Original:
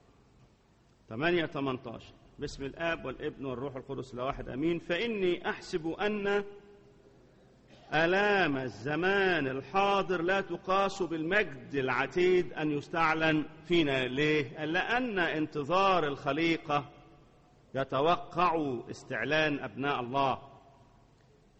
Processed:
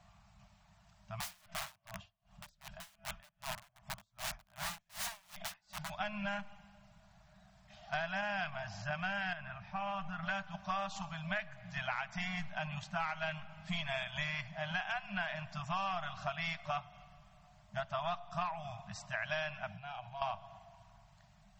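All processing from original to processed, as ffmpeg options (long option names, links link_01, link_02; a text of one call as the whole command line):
ffmpeg -i in.wav -filter_complex "[0:a]asettb=1/sr,asplit=3[link_01][link_02][link_03];[link_01]atrim=end=1.204[link_04];[link_02]atrim=start=1.2:end=5.9,asetpts=PTS-STARTPTS,afade=type=in:duration=0.004:curve=qsin,afade=type=out:start_time=4.696:duration=0.004:curve=qsin,bandreject=frequency=360:width=9.1,aeval=exprs='(mod(42.2*val(0)+1,2)-1)/42.2':channel_layout=same,aeval=exprs='val(0)*pow(10,-31*(0.5-0.5*cos(2*PI*2.6*n/s))/20)':channel_layout=same[link_05];[link_03]atrim=start=5.896[link_06];[link_04][link_05]acrossfade=duration=0.004:curve1=hsin:curve2=qsin[link_07];[link_07][link_06]acrossfade=duration=0.004:curve1=qsin:curve2=hsin,asettb=1/sr,asplit=3[link_08][link_09][link_10];[link_08]atrim=end=9.334[link_11];[link_09]atrim=start=9.33:end=10.23,asetpts=PTS-STARTPTS,afade=type=in:duration=0.004:curve=qsin,afade=type=out:start_time=0.896:duration=0.004:curve=qsin,equalizer=frequency=420:width=0.66:gain=-5,acompressor=threshold=-33dB:ratio=4:attack=3.2:release=140:knee=1:detection=peak,lowpass=frequency=1500:poles=1[link_12];[link_10]atrim=start=10.226[link_13];[link_11][link_12]acrossfade=duration=0.004:curve1=hsin:curve2=qsin[link_14];[link_14][link_13]acrossfade=duration=0.004:curve1=qsin:curve2=hsin,asettb=1/sr,asplit=3[link_15][link_16][link_17];[link_15]atrim=end=19.694[link_18];[link_16]atrim=start=19.69:end=20.22,asetpts=PTS-STARTPTS,afade=type=in:duration=0.004:curve=qsin,afade=type=out:start_time=0.526:duration=0.004:curve=qsin,equalizer=frequency=1500:width=3.7:gain=-4.5,aecho=1:1:1.3:0.51,atrim=end_sample=23373,acompressor=threshold=-42dB:ratio=8:attack=3.2:release=140:knee=1:detection=peak[link_19];[link_17]atrim=start=20.216[link_20];[link_18][link_19]acrossfade=duration=0.004:curve1=hsin:curve2=qsin[link_21];[link_21][link_20]acrossfade=duration=0.004:curve1=qsin:curve2=hsin,afftfilt=real='re*(1-between(b*sr/4096,210,590))':imag='im*(1-between(b*sr/4096,210,590))':win_size=4096:overlap=0.75,equalizer=frequency=130:width=6.2:gain=-7.5,acompressor=threshold=-36dB:ratio=6,volume=1.5dB" out.wav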